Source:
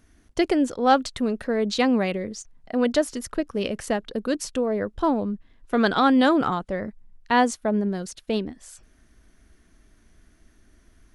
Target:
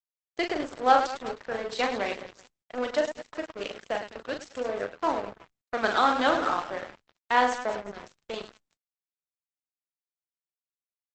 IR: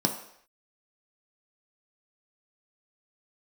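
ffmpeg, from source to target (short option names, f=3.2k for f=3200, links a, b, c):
-af "highpass=540,highshelf=f=6.1k:g=-9.5,aecho=1:1:40|104|206.4|370.2|632.4:0.631|0.398|0.251|0.158|0.1,aeval=exprs='sgn(val(0))*max(abs(val(0))-0.02,0)':c=same" -ar 48000 -c:a libopus -b:a 12k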